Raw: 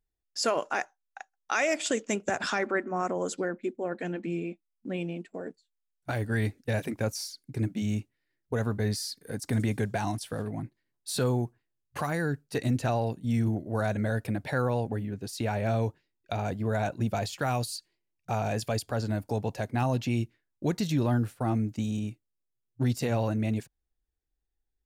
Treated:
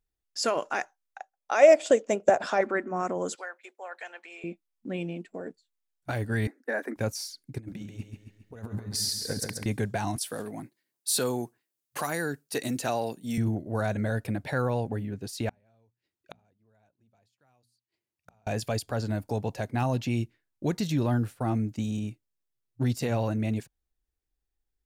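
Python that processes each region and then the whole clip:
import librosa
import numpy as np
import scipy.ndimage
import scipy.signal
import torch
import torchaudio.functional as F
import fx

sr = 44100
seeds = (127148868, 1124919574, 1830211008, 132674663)

y = fx.chain(x, sr, fx.peak_eq(hz=600.0, db=14.5, octaves=1.2),
    fx.upward_expand(threshold_db=-24.0, expansion=1.5), at=(1.18, 2.61))
y = fx.chain(y, sr, fx.highpass(hz=720.0, slope=24),
    fx.band_squash(depth_pct=40), at=(3.35, 4.44))
y = fx.chain(y, sr, fx.steep_highpass(hz=240.0, slope=48),
    fx.high_shelf_res(hz=2200.0, db=-9.0, q=3.0), at=(6.47, 6.96))
y = fx.chain(y, sr, fx.over_compress(threshold_db=-35.0, ratio=-0.5),
    fx.echo_feedback(ms=136, feedback_pct=48, wet_db=-5.0), at=(7.58, 9.66))
y = fx.chain(y, sr, fx.highpass(hz=220.0, slope=12),
    fx.high_shelf(hz=5100.0, db=11.5), at=(10.16, 13.38))
y = fx.chain(y, sr, fx.gate_flip(shuts_db=-36.0, range_db=-38),
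    fx.highpass(hz=47.0, slope=12),
    fx.hum_notches(base_hz=60, count=4), at=(15.49, 18.47))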